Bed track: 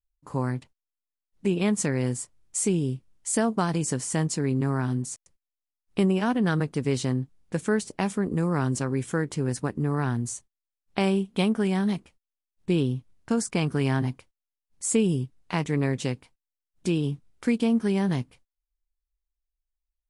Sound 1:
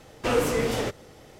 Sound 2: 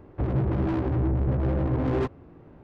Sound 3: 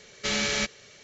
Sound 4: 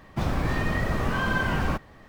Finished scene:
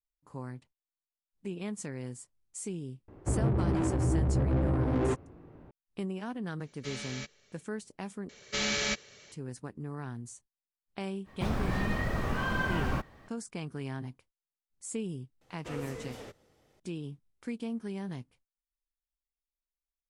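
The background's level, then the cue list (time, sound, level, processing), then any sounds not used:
bed track -13.5 dB
3.08 s: add 2 -3 dB
6.60 s: add 3 -15 dB
8.29 s: replace with 3 -3.5 dB
11.24 s: add 4 -5.5 dB, fades 0.05 s
15.41 s: add 1 -18 dB

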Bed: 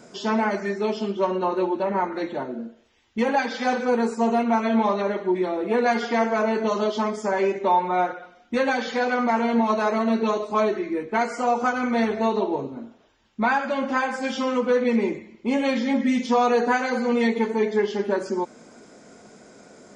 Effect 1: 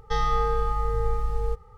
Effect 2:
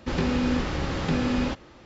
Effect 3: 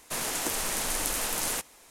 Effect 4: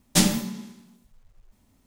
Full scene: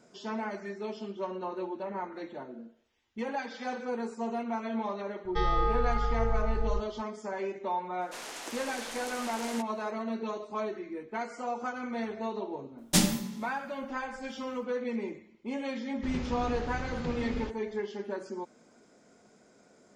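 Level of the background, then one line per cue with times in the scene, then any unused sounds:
bed -12.5 dB
5.25 s: add 1 -3.5 dB + low-pass 4.8 kHz 24 dB/octave
8.01 s: add 3 -7.5 dB + three-band isolator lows -15 dB, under 250 Hz, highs -14 dB, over 6.9 kHz
12.78 s: add 4 -4.5 dB
15.96 s: add 2 -13 dB + bass shelf 84 Hz +9.5 dB

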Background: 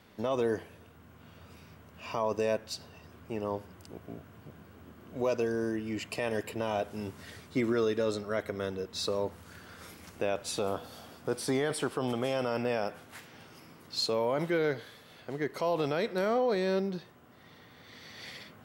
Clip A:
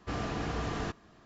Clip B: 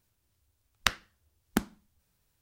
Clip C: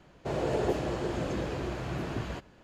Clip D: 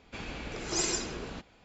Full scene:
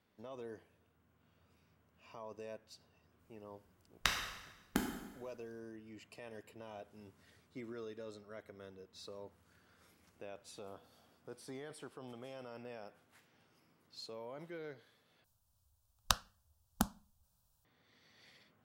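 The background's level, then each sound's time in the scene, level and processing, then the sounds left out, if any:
background -18.5 dB
3.19 s: add B -8 dB + plate-style reverb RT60 1.1 s, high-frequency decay 0.9×, DRR 0.5 dB
15.24 s: replace with B -1 dB + static phaser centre 860 Hz, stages 4
not used: A, C, D

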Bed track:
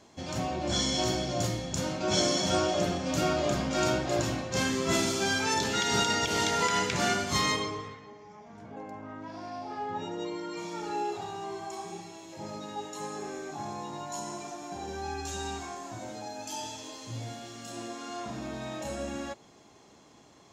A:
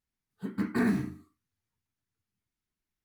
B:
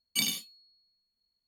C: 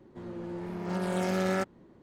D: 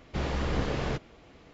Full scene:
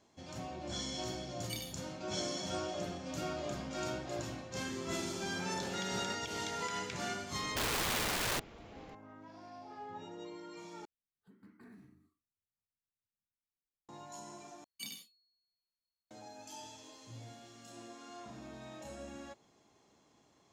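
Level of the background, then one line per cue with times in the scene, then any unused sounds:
bed track -11.5 dB
1.34 s: add B -14.5 dB
4.51 s: add C -8.5 dB + peak limiter -25.5 dBFS
7.42 s: add D + integer overflow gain 29.5 dB
10.85 s: replace with A -16.5 dB + compression 2:1, threshold -48 dBFS
14.64 s: replace with B -16 dB

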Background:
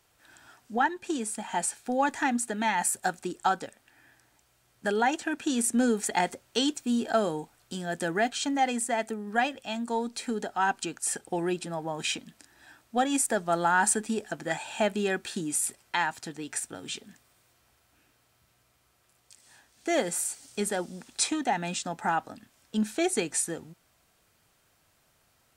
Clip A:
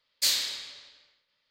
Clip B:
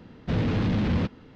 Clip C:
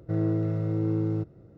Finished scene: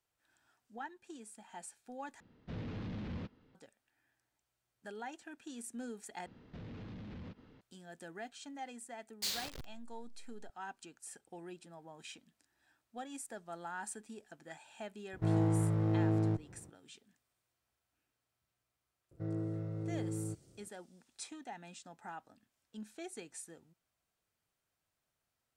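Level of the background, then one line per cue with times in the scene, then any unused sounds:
background -19.5 dB
2.20 s: replace with B -17.5 dB
6.26 s: replace with B -11 dB + compression 5:1, threshold -35 dBFS
9.00 s: add A -12 dB + send-on-delta sampling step -26.5 dBFS
15.13 s: add C -3.5 dB + comb filter that takes the minimum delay 0.54 ms
19.11 s: add C -12 dB

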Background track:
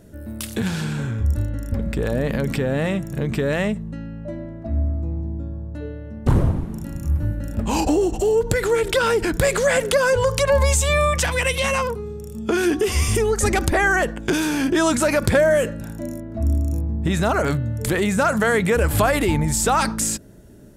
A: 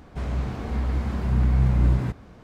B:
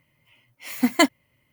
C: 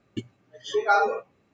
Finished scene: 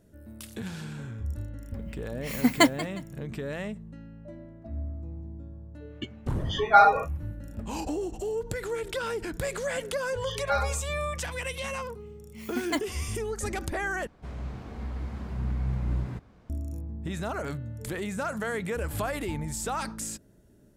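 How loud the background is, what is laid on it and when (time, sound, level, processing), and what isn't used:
background track -13 dB
1.61 s: add B -2 dB + modulated delay 179 ms, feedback 30%, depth 163 cents, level -16.5 dB
5.85 s: add C -5.5 dB, fades 0.10 s + high-order bell 1.5 kHz +10 dB 3 oct
9.61 s: add C -0.5 dB + band-pass filter 3 kHz, Q 1
11.73 s: add B -12.5 dB
14.07 s: replace with A -9.5 dB

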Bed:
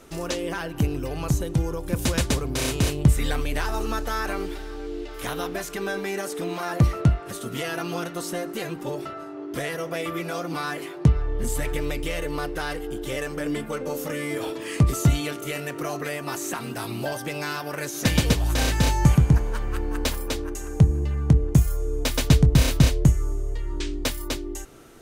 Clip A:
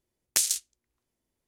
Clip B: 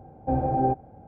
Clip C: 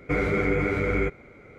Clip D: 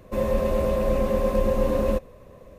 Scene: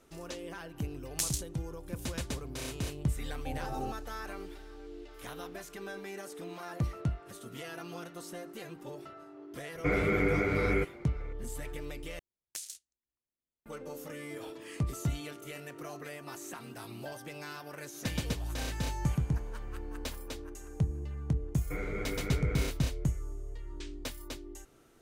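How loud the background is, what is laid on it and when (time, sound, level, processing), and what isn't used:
bed -13.5 dB
0.83 s: add A -8.5 dB
3.18 s: add B -15 dB
9.75 s: add C -4 dB
12.19 s: replace with A -17.5 dB
21.61 s: add C -13.5 dB
not used: D

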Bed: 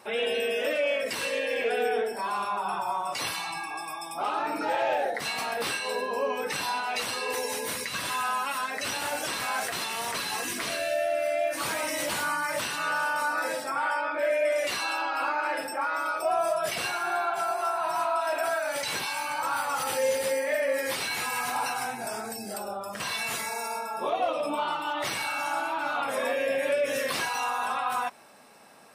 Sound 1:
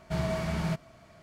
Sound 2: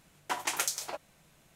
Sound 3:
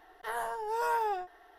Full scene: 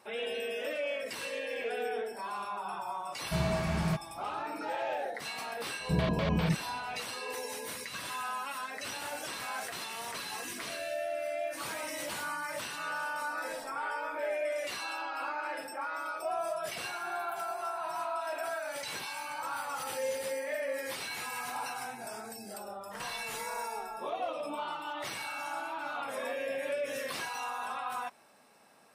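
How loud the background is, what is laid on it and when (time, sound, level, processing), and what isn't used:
bed -8 dB
3.21 s: add 1 -0.5 dB
5.79 s: add 1 + LFO low-pass square 5 Hz 290–3500 Hz
13.21 s: add 3 -16 dB
16.72 s: add 2 -15 dB + inverse Chebyshev band-stop 740–4500 Hz, stop band 60 dB
22.67 s: add 3 -10 dB + frequency shift +18 Hz

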